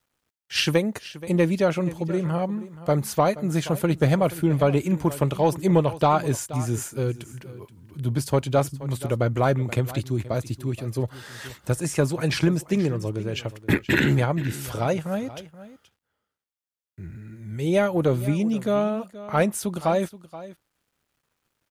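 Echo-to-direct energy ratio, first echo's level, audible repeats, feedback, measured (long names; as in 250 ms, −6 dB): −16.5 dB, −16.5 dB, 1, repeats not evenly spaced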